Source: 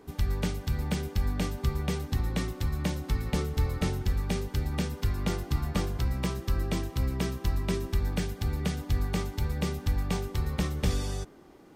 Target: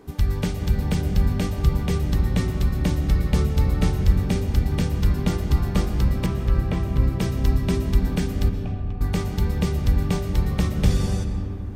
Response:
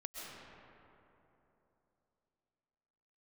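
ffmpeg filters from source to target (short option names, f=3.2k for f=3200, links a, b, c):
-filter_complex "[0:a]asettb=1/sr,asplit=3[a][b][c];[a]atrim=end=6.264[d];[b]atrim=start=6.26:end=7.15,asetpts=PTS-STARTPTS,afade=t=in:d=0.004:c=qsin,afade=t=out:st=0.886:d=0.004:c=qsin,acrossover=split=3000[e][f];[f]acompressor=threshold=-53dB:ratio=4:attack=1:release=60[g];[e][g]amix=inputs=2:normalize=0[h];[c]atrim=start=7.146[i];[d][h]acrossfade=d=0.004:c1=hsin:c2=qsin[j];[j][i]acrossfade=d=0.004:c1=qsin:c2=hsin,asettb=1/sr,asplit=3[k][l][m];[k]atrim=end=8.494[n];[l]atrim=start=8.49:end=9.01,asetpts=PTS-STARTPTS,afade=t=in:d=0.004:c=qsin,afade=t=out:st=0.516:d=0.004:c=qsin,asplit=3[o][p][q];[o]bandpass=f=730:t=q:w=8,volume=0dB[r];[p]bandpass=f=1.09k:t=q:w=8,volume=-6dB[s];[q]bandpass=f=2.44k:t=q:w=8,volume=-9dB[t];[r][s][t]amix=inputs=3:normalize=0[u];[m]atrim=start=9.006[v];[n][u]acrossfade=d=0.004:c1=hsin:c2=qsin[w];[w][v]acrossfade=d=0.004:c1=qsin:c2=hsin,asplit=2[x][y];[y]lowshelf=f=360:g=10[z];[1:a]atrim=start_sample=2205[aa];[z][aa]afir=irnorm=-1:irlink=0,volume=-1.5dB[ab];[x][ab]amix=inputs=2:normalize=0"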